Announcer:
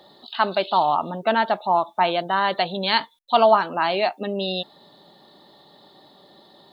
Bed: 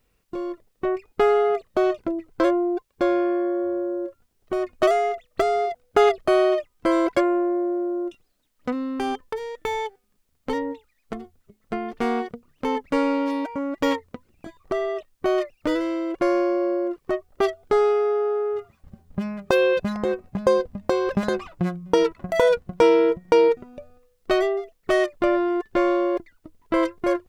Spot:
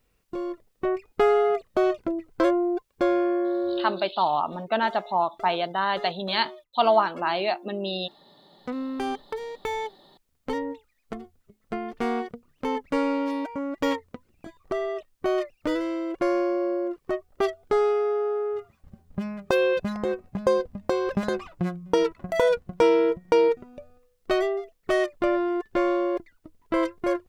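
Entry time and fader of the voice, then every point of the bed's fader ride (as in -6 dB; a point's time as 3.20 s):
3.45 s, -4.0 dB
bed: 3.80 s -1.5 dB
4.27 s -22.5 dB
8.27 s -22.5 dB
8.78 s -3 dB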